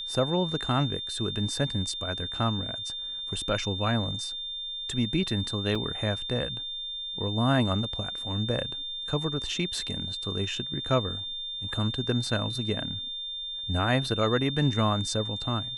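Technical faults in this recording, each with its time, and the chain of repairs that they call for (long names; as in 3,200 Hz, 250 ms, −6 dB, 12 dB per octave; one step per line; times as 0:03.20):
whistle 3,600 Hz −33 dBFS
0:05.75: drop-out 4.3 ms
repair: notch filter 3,600 Hz, Q 30
repair the gap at 0:05.75, 4.3 ms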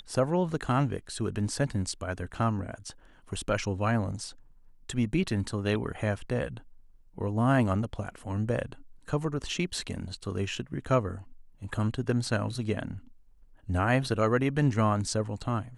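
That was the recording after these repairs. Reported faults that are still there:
none of them is left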